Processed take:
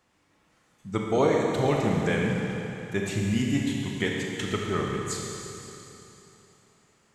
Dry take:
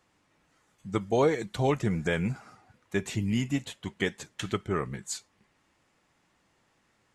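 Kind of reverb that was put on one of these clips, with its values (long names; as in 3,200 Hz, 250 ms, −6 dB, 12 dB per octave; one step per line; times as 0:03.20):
four-comb reverb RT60 3.2 s, combs from 28 ms, DRR −1 dB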